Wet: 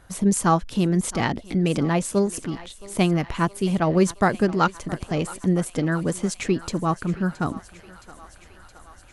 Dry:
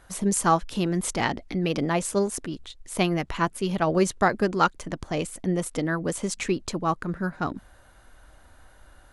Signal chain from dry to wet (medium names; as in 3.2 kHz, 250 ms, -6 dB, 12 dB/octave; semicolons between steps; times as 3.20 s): peaking EQ 130 Hz +6.5 dB 2.4 oct; thinning echo 669 ms, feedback 75%, high-pass 510 Hz, level -17 dB